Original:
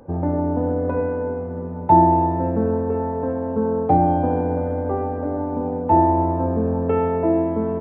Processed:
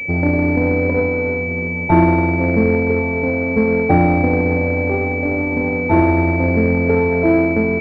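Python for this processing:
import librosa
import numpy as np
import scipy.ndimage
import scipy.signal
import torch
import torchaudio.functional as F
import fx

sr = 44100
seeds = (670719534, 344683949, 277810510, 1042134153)

y = scipy.signal.medfilt(x, 41)
y = fx.cheby_harmonics(y, sr, harmonics=(6,), levels_db=(-25,), full_scale_db=-7.5)
y = fx.pwm(y, sr, carrier_hz=2300.0)
y = F.gain(torch.from_numpy(y), 6.0).numpy()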